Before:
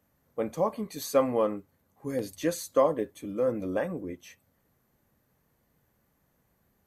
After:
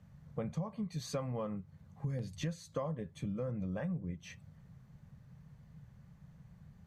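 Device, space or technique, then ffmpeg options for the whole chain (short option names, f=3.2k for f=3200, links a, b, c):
jukebox: -af "lowpass=5.9k,lowshelf=f=220:t=q:w=3:g=11,acompressor=threshold=-39dB:ratio=6,volume=3dB"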